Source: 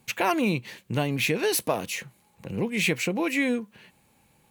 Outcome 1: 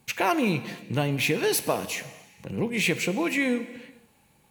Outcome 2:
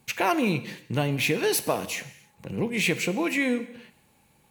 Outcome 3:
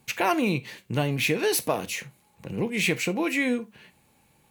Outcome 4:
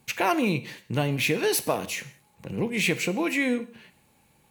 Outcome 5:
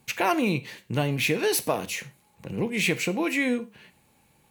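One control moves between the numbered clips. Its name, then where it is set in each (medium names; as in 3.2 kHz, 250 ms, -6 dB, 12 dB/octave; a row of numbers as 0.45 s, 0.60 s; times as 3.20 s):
gated-style reverb, gate: 520 ms, 340 ms, 100 ms, 210 ms, 140 ms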